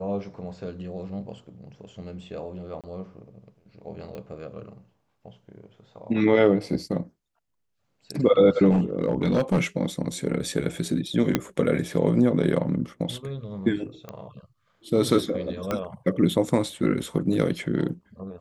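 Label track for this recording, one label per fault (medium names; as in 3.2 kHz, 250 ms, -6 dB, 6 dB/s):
2.810000	2.840000	dropout 27 ms
4.150000	4.150000	pop -26 dBFS
8.700000	9.610000	clipped -16.5 dBFS
11.350000	11.350000	pop -6 dBFS
14.090000	14.090000	pop -22 dBFS
15.710000	15.710000	pop -13 dBFS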